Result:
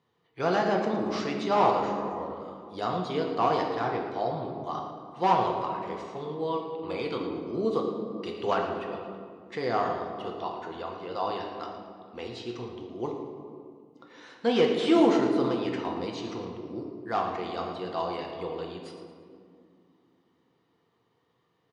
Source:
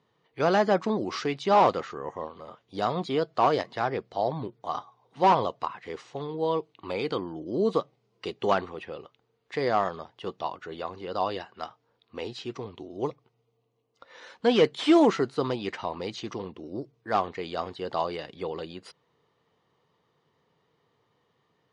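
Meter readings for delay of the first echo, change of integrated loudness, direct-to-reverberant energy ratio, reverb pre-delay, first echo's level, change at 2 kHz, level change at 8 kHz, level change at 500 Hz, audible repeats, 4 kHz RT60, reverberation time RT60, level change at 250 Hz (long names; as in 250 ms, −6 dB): 113 ms, −1.5 dB, 1.0 dB, 6 ms, −11.5 dB, −1.5 dB, can't be measured, −1.5 dB, 1, 1.2 s, 2.3 s, 0.0 dB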